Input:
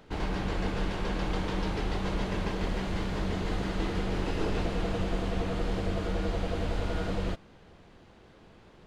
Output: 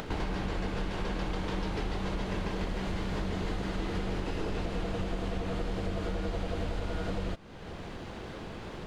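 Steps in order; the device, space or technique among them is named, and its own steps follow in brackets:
upward and downward compression (upward compression, threshold −41 dBFS; downward compressor 6 to 1, threshold −38 dBFS, peak gain reduction 13 dB)
level +8 dB

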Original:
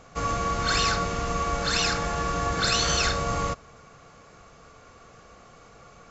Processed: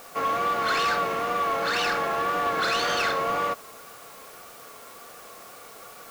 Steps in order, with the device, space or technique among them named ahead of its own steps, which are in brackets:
tape answering machine (band-pass filter 350–2,800 Hz; soft clipping −24.5 dBFS, distortion −15 dB; tape wow and flutter; white noise bed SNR 21 dB)
level +5.5 dB

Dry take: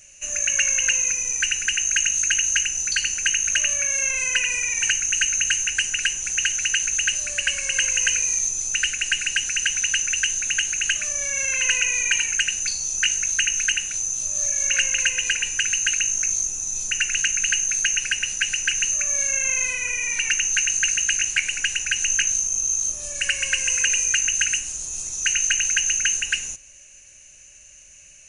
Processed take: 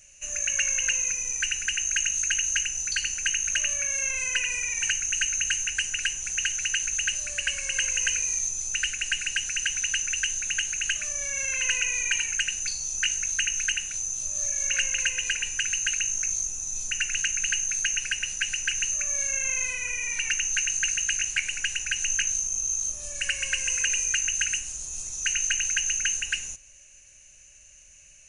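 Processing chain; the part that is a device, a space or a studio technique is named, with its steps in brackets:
low shelf boost with a cut just above (low-shelf EQ 66 Hz +6 dB; parametric band 310 Hz −3 dB 0.73 octaves)
level −5 dB

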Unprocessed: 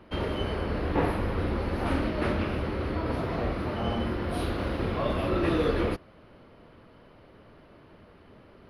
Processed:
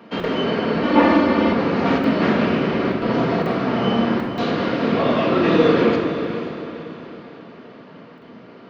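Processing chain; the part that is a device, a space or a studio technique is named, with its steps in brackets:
call with lost packets (high-pass filter 150 Hz 24 dB per octave; downsampling to 16,000 Hz; dropped packets of 20 ms bursts)
feedback delay with all-pass diffusion 500 ms, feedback 41%, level −10 dB
rectangular room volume 1,300 cubic metres, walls mixed, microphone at 1.7 metres
0:00.83–0:01.53: comb filter 3.4 ms, depth 97%
level +7.5 dB

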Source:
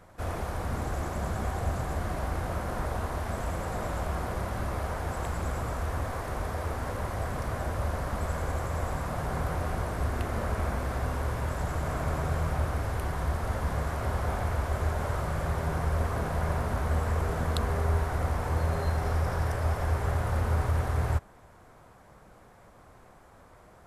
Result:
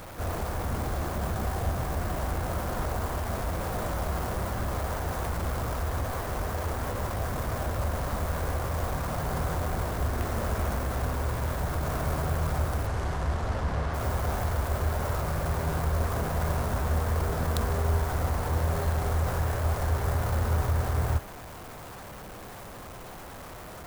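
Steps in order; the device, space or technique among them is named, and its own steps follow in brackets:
early CD player with a faulty converter (converter with a step at zero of −38.5 dBFS; converter with an unsteady clock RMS 0.048 ms)
0:12.86–0:13.93: low-pass filter 8,500 Hz → 4,600 Hz 12 dB per octave

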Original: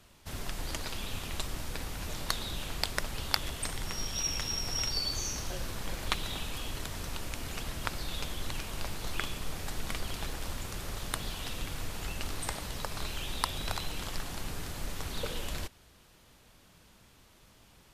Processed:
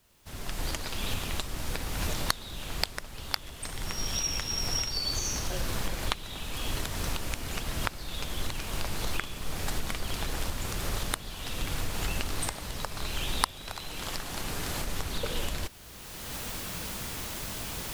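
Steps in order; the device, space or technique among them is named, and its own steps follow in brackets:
cheap recorder with automatic gain (white noise bed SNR 26 dB; camcorder AGC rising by 23 dB per second)
0:13.51–0:14.87: low-shelf EQ 180 Hz −5.5 dB
level −9.5 dB

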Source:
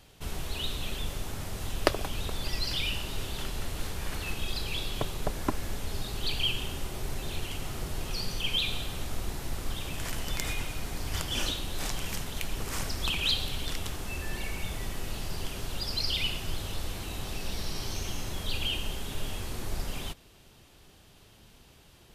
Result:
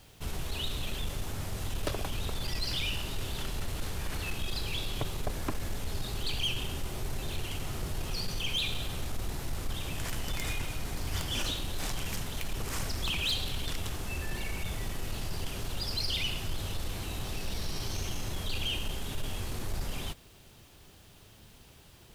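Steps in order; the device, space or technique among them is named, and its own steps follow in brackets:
open-reel tape (soft clipping −24.5 dBFS, distortion −15 dB; parametric band 100 Hz +3 dB 1.07 octaves; white noise bed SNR 33 dB)

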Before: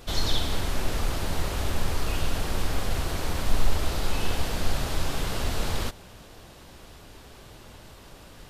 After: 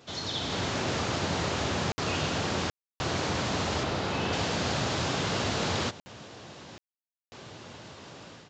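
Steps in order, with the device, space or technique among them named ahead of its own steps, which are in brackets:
call with lost packets (high-pass filter 100 Hz 24 dB per octave; downsampling to 16,000 Hz; automatic gain control gain up to 9.5 dB; dropped packets of 60 ms bursts)
0:03.83–0:04.33: high-shelf EQ 4,600 Hz −10 dB
level −6 dB

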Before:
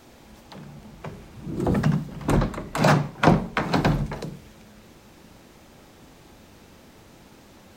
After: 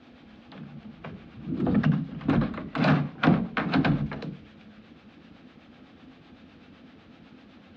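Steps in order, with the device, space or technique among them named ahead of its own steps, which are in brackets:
guitar amplifier with harmonic tremolo (two-band tremolo in antiphase 7.9 Hz, depth 50%, crossover 530 Hz; soft clipping −14.5 dBFS, distortion −14 dB; loudspeaker in its box 88–3,700 Hz, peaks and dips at 120 Hz −6 dB, 260 Hz +6 dB, 380 Hz −7 dB, 580 Hz −5 dB, 930 Hz −9 dB, 2,000 Hz −3 dB)
level +2.5 dB

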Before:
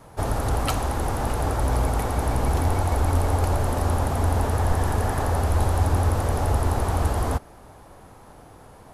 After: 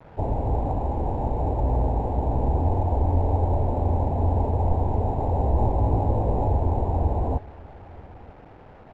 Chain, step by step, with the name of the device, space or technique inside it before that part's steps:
0:05.37–0:06.48: double-tracking delay 18 ms −3 dB
Butterworth low-pass 960 Hz 72 dB per octave
early 8-bit sampler (sample-rate reduction 7,900 Hz, jitter 0%; bit reduction 8 bits)
low-pass filter 1,700 Hz 12 dB per octave
single-tap delay 931 ms −22 dB

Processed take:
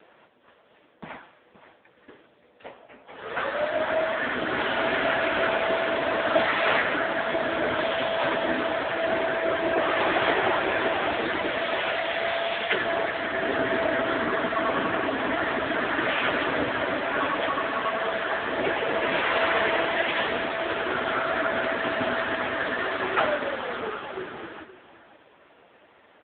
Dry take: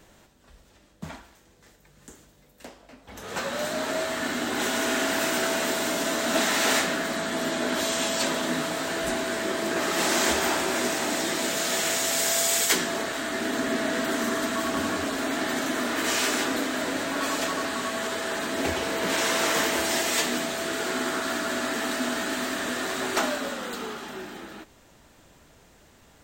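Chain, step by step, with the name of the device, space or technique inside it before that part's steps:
satellite phone (band-pass filter 350–3,400 Hz; single-tap delay 520 ms −14.5 dB; level +7.5 dB; AMR narrowband 5.9 kbit/s 8,000 Hz)

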